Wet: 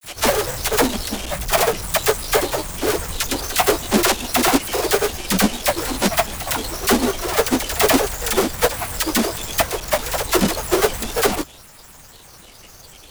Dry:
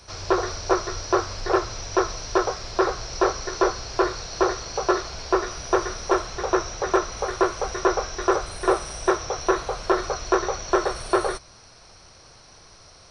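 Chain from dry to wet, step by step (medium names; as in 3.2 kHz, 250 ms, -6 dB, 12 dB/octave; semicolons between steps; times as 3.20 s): square wave that keeps the level; treble shelf 5.7 kHz +12 dB; phase dispersion lows, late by 41 ms, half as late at 900 Hz; granulator, pitch spread up and down by 12 st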